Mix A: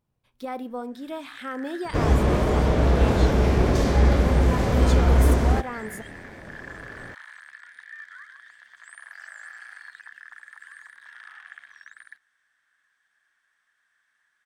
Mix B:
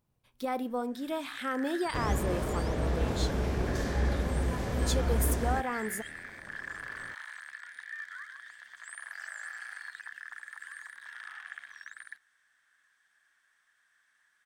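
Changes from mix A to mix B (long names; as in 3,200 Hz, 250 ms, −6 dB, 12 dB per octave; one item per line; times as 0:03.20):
second sound −11.0 dB
master: add high-shelf EQ 6,100 Hz +6 dB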